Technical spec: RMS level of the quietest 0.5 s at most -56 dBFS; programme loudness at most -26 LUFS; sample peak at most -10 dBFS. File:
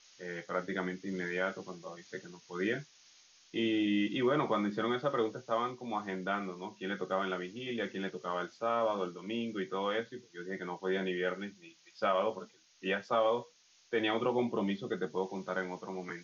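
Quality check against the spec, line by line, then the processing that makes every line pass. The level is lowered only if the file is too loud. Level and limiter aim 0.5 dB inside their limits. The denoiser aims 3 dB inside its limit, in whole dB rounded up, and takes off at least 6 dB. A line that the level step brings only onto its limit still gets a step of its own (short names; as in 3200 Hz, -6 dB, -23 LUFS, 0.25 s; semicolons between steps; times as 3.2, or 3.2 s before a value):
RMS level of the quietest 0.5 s -62 dBFS: OK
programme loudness -35.0 LUFS: OK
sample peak -18.0 dBFS: OK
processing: none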